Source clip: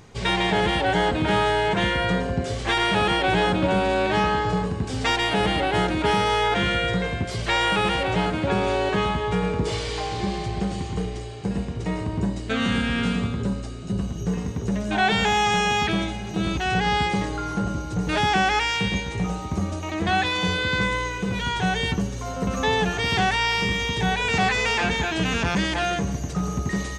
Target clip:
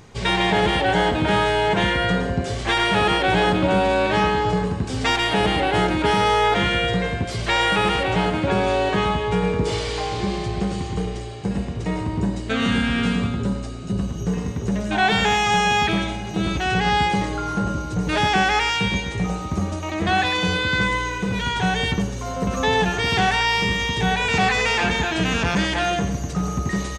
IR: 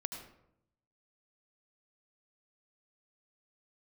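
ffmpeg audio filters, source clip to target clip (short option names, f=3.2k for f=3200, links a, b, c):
-filter_complex "[0:a]asplit=2[a][b];[b]adelay=100,highpass=300,lowpass=3.4k,asoftclip=type=hard:threshold=-17dB,volume=-9dB[c];[a][c]amix=inputs=2:normalize=0,volume=2dB"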